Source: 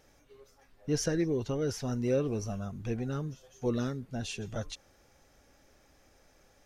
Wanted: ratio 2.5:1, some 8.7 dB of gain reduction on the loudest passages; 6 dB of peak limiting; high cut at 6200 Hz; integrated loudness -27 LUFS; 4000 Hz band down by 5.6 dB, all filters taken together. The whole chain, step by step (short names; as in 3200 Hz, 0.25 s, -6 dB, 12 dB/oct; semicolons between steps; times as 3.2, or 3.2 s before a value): LPF 6200 Hz; bell 4000 Hz -6.5 dB; compressor 2.5:1, threshold -38 dBFS; gain +15.5 dB; limiter -17 dBFS